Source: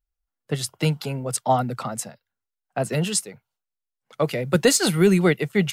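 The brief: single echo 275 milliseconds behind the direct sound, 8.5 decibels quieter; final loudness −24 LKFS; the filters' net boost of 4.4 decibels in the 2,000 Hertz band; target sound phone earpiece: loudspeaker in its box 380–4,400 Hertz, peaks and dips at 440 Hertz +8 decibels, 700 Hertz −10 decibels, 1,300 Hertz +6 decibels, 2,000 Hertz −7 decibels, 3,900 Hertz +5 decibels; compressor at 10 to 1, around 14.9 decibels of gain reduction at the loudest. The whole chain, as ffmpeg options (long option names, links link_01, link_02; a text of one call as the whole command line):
ffmpeg -i in.wav -af "equalizer=frequency=2000:width_type=o:gain=8.5,acompressor=threshold=-26dB:ratio=10,highpass=380,equalizer=frequency=440:width_type=q:width=4:gain=8,equalizer=frequency=700:width_type=q:width=4:gain=-10,equalizer=frequency=1300:width_type=q:width=4:gain=6,equalizer=frequency=2000:width_type=q:width=4:gain=-7,equalizer=frequency=3900:width_type=q:width=4:gain=5,lowpass=frequency=4400:width=0.5412,lowpass=frequency=4400:width=1.3066,aecho=1:1:275:0.376,volume=9dB" out.wav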